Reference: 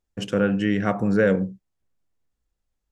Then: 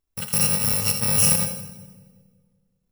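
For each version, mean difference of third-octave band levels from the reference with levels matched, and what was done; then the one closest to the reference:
17.5 dB: samples in bit-reversed order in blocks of 128 samples
on a send: echo with a time of its own for lows and highs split 490 Hz, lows 187 ms, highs 83 ms, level −10 dB
on the sum: dense smooth reverb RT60 1.5 s, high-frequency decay 0.85×, DRR 15 dB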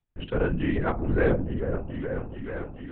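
6.0 dB: notch filter 3,000 Hz, Q 23
echo whose low-pass opens from repeat to repeat 432 ms, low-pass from 750 Hz, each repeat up 1 octave, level −6 dB
linear-prediction vocoder at 8 kHz whisper
level −4 dB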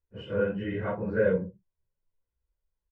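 4.0 dB: random phases in long frames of 100 ms
high-frequency loss of the air 470 metres
comb filter 2 ms, depth 60%
level −6.5 dB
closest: third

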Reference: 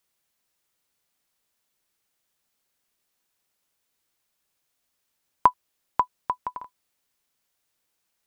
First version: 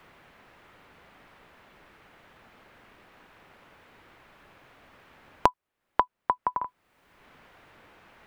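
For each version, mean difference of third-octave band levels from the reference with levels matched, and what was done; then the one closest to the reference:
4.0 dB: multiband upward and downward compressor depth 100%
level +1 dB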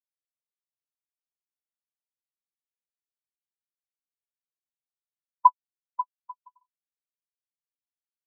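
8.5 dB: every bin expanded away from the loudest bin 2.5 to 1
level −1.5 dB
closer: first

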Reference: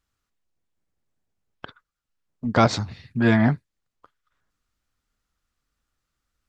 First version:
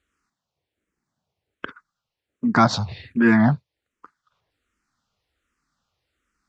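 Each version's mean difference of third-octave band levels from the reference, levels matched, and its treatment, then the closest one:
3.5 dB: high-pass filter 130 Hz 6 dB per octave
in parallel at +2 dB: downward compressor, threshold −28 dBFS, peak gain reduction 15 dB
on the sum: high-frequency loss of the air 55 metres
frequency shifter mixed with the dry sound −1.3 Hz
level +2.5 dB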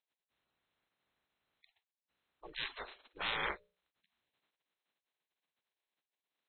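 13.0 dB: spectral magnitudes quantised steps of 30 dB
mains-hum notches 60/120/180/240/300/360/420/480/540/600 Hz
gate on every frequency bin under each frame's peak −25 dB weak
linear-phase brick-wall low-pass 4,200 Hz
level +1 dB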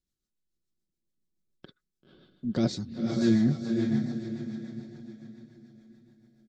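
7.5 dB: drawn EQ curve 100 Hz 0 dB, 320 Hz +6 dB, 950 Hz −14 dB, 1,800 Hz −8 dB, 2,700 Hz −8 dB, 3,800 Hz +2 dB
on a send: feedback delay with all-pass diffusion 526 ms, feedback 42%, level −3.5 dB
on the sum: rotating-speaker cabinet horn 7 Hz
comb filter 5.4 ms, depth 42%
level −7 dB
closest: first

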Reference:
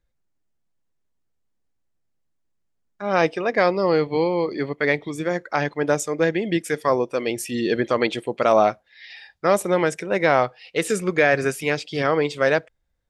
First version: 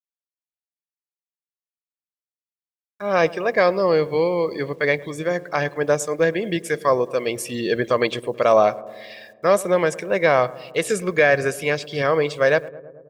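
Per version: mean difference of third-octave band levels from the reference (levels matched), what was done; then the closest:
3.0 dB: bit-depth reduction 10 bits, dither none
comb filter 1.8 ms, depth 36%
on a send: feedback echo with a low-pass in the loop 108 ms, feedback 75%, low-pass 1,200 Hz, level −18.5 dB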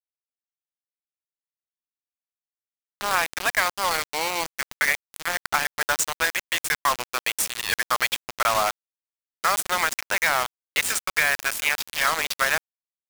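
14.5 dB: high-pass filter 910 Hz 24 dB per octave
downward compressor 4 to 1, threshold −25 dBFS, peak gain reduction 8 dB
bit reduction 5 bits
level +6.5 dB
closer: first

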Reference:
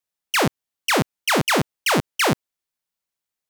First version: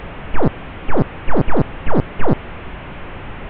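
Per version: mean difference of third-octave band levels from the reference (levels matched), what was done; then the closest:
20.5 dB: linear delta modulator 16 kbit/s, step −26 dBFS
spectral tilt −3.5 dB per octave
highs frequency-modulated by the lows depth 0.92 ms
level −1 dB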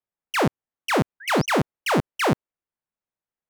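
3.5 dB: adaptive Wiener filter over 9 samples
high-shelf EQ 2,200 Hz −9.5 dB
sound drawn into the spectrogram rise, 0:01.20–0:01.46, 1,500–6,400 Hz −41 dBFS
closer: second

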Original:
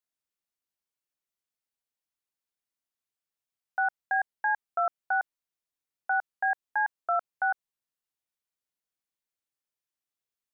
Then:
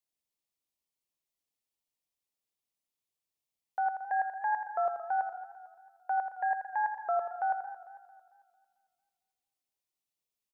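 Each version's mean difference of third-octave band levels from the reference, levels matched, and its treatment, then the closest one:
2.0 dB: parametric band 1,500 Hz −14 dB 0.46 octaves
on a send: repeating echo 82 ms, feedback 32%, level −8 dB
on the sum: feedback echo with a swinging delay time 224 ms, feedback 45%, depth 70 cents, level −14 dB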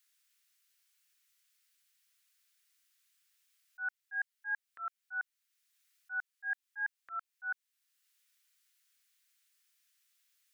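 4.5 dB: high-pass filter 1,500 Hz 24 dB per octave
volume swells 758 ms
level +16.5 dB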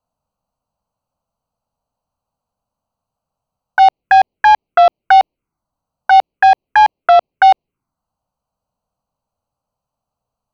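6.5 dB: adaptive Wiener filter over 25 samples
phaser swept by the level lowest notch 360 Hz, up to 1,500 Hz, full sweep at −29 dBFS
boost into a limiter +28.5 dB
level −1 dB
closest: first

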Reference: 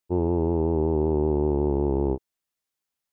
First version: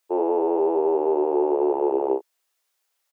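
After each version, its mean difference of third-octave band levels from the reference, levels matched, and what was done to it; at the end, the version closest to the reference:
8.0 dB: inverse Chebyshev high-pass filter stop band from 200 Hz, stop band 40 dB
in parallel at +3 dB: brickwall limiter −28 dBFS, peak gain reduction 8 dB
on the sum: double-tracking delay 30 ms −6 dB
level +2.5 dB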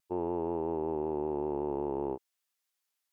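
3.5 dB: high-pass filter 990 Hz 6 dB per octave
brickwall limiter −25 dBFS, peak gain reduction 3 dB
pitch vibrato 0.65 Hz 15 cents
level +2.5 dB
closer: second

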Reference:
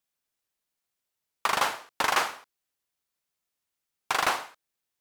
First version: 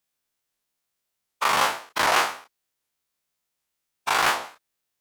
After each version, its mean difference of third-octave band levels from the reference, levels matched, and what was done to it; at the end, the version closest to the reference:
1.0 dB: every bin's largest magnitude spread in time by 60 ms
wow of a warped record 78 rpm, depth 250 cents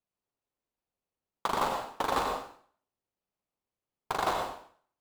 8.0 dB: running median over 25 samples
dense smooth reverb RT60 0.5 s, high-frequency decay 0.95×, pre-delay 80 ms, DRR 3 dB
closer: first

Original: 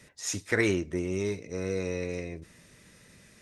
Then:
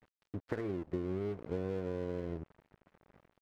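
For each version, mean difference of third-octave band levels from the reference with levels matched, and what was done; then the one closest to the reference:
8.0 dB: downward compressor 10 to 1, threshold −38 dBFS, peak gain reduction 18 dB
low-pass filter 1,300 Hz 24 dB per octave
dead-zone distortion −54 dBFS
level +7 dB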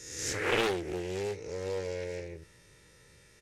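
5.5 dB: peak hold with a rise ahead of every peak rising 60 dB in 0.97 s
comb filter 2.2 ms, depth 67%
highs frequency-modulated by the lows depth 0.61 ms
level −6.5 dB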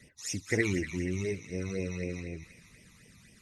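3.5 dB: spectral magnitudes quantised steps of 15 dB
all-pass phaser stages 12, 4 Hz, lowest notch 490–1,400 Hz
on a send: delay with a high-pass on its return 238 ms, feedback 50%, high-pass 1,400 Hz, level −8.5 dB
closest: third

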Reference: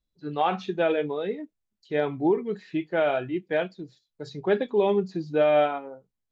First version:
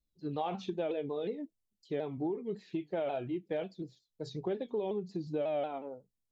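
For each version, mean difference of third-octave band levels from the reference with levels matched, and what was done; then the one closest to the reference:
3.0 dB: parametric band 1,500 Hz −14 dB 1.4 octaves
downward compressor, threshold −31 dBFS, peak gain reduction 11.5 dB
dynamic equaliser 1,100 Hz, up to +4 dB, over −47 dBFS, Q 0.72
pitch modulation by a square or saw wave saw down 5.5 Hz, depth 100 cents
level −2 dB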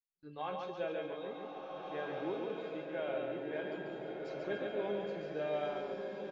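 9.0 dB: noise gate with hold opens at −46 dBFS
tuned comb filter 540 Hz, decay 0.53 s, mix 90%
on a send: repeating echo 141 ms, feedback 46%, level −4 dB
on the sum: slow-attack reverb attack 1,660 ms, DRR 1.5 dB
level +1.5 dB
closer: first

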